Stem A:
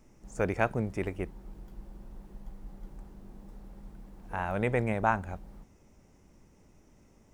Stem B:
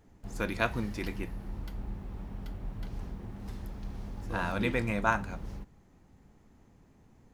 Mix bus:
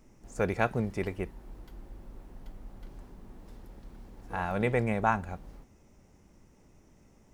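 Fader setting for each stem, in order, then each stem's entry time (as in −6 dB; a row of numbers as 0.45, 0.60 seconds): 0.0, −10.0 decibels; 0.00, 0.00 seconds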